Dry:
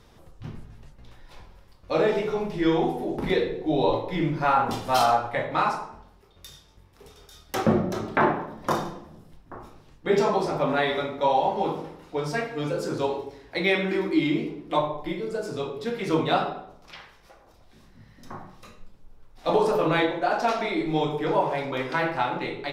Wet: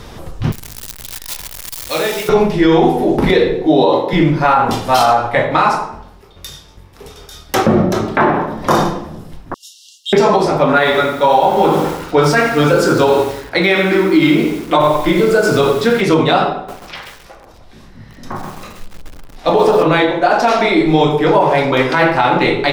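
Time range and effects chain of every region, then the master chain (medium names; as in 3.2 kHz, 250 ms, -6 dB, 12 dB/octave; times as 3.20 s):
0.52–2.29 s: jump at every zero crossing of -34.5 dBFS + pre-emphasis filter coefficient 0.9
3.67–4.13 s: high-pass 160 Hz 24 dB/octave + band-stop 2.4 kHz, Q 5.4
9.54–10.13 s: brick-wall FIR high-pass 2.7 kHz + peaking EQ 6.7 kHz +11.5 dB 1.6 oct
10.68–16.01 s: peaking EQ 1.4 kHz +7.5 dB 0.37 oct + bit-crushed delay 86 ms, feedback 55%, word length 7-bit, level -10.5 dB
16.55–19.83 s: treble shelf 8.7 kHz -4.5 dB + bit-crushed delay 133 ms, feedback 55%, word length 8-bit, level -4 dB
whole clip: gain riding 0.5 s; loudness maximiser +15 dB; trim -1 dB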